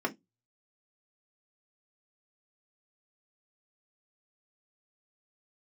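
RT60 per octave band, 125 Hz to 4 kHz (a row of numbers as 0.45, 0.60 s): 0.35, 0.20, 0.20, 0.15, 0.15, 0.15 s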